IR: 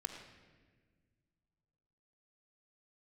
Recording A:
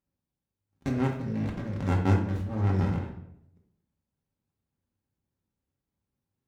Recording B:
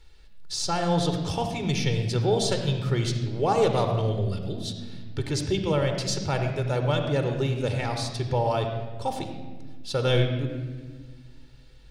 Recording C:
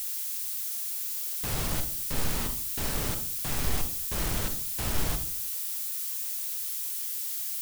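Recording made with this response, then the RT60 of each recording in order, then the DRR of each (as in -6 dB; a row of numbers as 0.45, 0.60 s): B; 0.75, 1.6, 0.45 s; -1.5, 5.0, 8.0 dB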